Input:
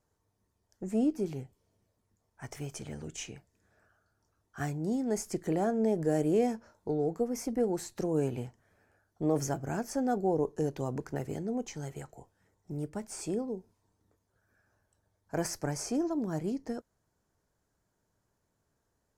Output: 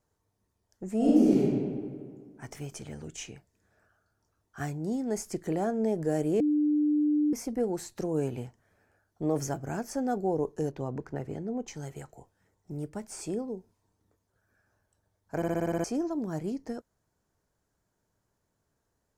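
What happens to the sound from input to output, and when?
0:00.97–0:01.42: thrown reverb, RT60 1.9 s, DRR −8.5 dB
0:06.40–0:07.33: beep over 298 Hz −22 dBFS
0:10.71–0:11.68: low-pass filter 2,200 Hz 6 dB per octave
0:15.36: stutter in place 0.06 s, 8 plays

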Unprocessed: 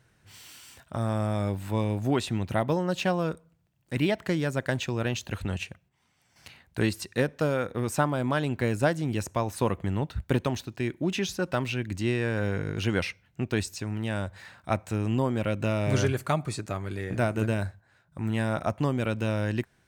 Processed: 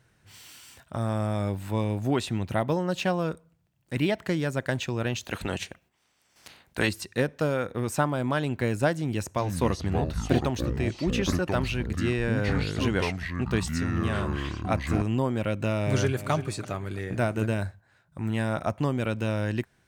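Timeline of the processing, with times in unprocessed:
0:05.23–0:06.87: ceiling on every frequency bin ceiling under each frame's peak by 14 dB
0:08.96–0:15.02: delay with pitch and tempo change per echo 414 ms, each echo −6 semitones, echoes 2
0:15.83–0:16.30: delay throw 340 ms, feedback 35%, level −12 dB

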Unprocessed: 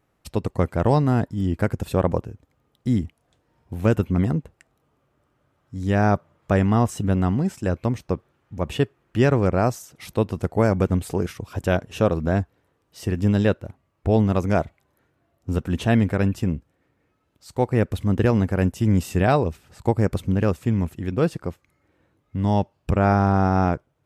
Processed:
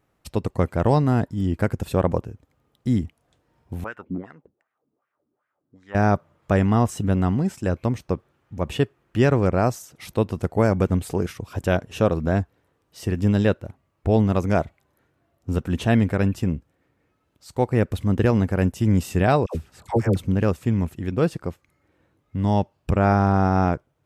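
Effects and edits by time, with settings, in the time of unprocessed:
0:03.84–0:05.95: LFO wah 2.6 Hz 240–1,900 Hz, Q 3
0:19.46–0:20.16: all-pass dispersion lows, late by 90 ms, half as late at 800 Hz

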